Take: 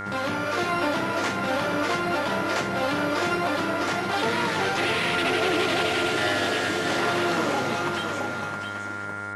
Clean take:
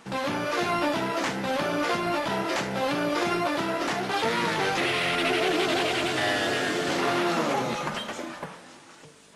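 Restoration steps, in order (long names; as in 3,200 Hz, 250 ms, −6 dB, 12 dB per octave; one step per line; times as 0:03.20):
click removal
hum removal 101.5 Hz, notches 22
notch filter 1,400 Hz, Q 30
echo removal 666 ms −6.5 dB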